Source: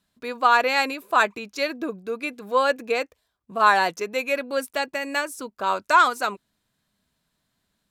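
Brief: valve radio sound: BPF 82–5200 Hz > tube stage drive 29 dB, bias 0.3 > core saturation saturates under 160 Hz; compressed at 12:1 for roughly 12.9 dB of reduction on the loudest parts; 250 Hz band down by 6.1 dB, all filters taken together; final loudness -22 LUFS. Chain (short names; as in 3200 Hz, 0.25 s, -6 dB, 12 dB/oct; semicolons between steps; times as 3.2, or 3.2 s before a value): bell 250 Hz -7.5 dB; compressor 12:1, threshold -25 dBFS; BPF 82–5200 Hz; tube stage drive 29 dB, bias 0.3; core saturation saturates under 160 Hz; gain +15 dB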